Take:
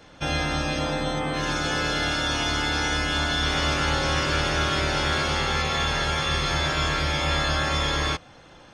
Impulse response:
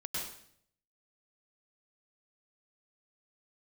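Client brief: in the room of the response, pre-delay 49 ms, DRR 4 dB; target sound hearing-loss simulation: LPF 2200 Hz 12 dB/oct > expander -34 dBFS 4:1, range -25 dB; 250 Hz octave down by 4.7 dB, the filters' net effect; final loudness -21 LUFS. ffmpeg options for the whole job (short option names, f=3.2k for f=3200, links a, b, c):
-filter_complex "[0:a]equalizer=f=250:t=o:g=-7,asplit=2[a][b];[1:a]atrim=start_sample=2205,adelay=49[c];[b][c]afir=irnorm=-1:irlink=0,volume=-6dB[d];[a][d]amix=inputs=2:normalize=0,lowpass=2.2k,agate=range=-25dB:threshold=-34dB:ratio=4,volume=4.5dB"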